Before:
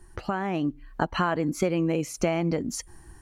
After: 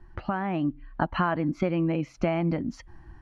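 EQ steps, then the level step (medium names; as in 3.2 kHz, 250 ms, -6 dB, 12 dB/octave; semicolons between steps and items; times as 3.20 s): distance through air 260 m; peaking EQ 440 Hz -14 dB 0.27 oct; treble shelf 6.1 kHz -5 dB; +1.5 dB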